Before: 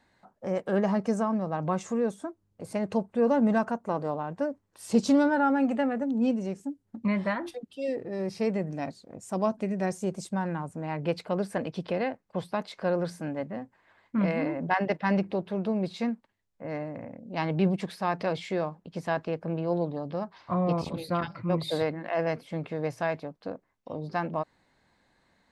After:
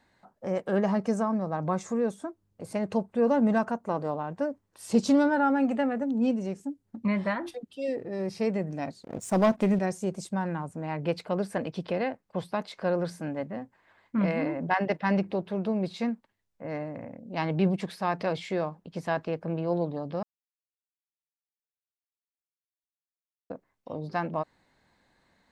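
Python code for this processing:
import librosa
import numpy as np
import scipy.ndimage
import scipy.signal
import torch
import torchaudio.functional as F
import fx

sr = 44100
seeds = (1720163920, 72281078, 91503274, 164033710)

y = fx.peak_eq(x, sr, hz=2900.0, db=-9.5, octaves=0.26, at=(1.22, 2.0))
y = fx.leveller(y, sr, passes=2, at=(9.03, 9.79))
y = fx.edit(y, sr, fx.silence(start_s=20.23, length_s=3.27), tone=tone)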